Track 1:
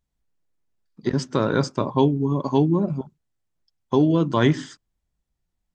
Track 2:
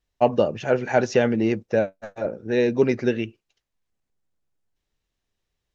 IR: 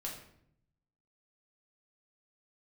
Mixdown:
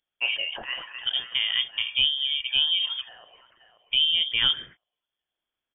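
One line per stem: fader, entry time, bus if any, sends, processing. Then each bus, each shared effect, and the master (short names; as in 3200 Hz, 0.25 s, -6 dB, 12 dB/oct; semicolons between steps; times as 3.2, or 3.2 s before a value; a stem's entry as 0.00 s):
-4.5 dB, 0.00 s, no send, no echo send, HPF 110 Hz
-4.0 dB, 0.00 s, send -22 dB, echo send -23 dB, HPF 860 Hz 12 dB/oct; sustainer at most 49 dB/s; auto duck -15 dB, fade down 0.30 s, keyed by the first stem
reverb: on, RT60 0.70 s, pre-delay 5 ms
echo: feedback echo 0.531 s, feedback 24%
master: inverted band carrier 3400 Hz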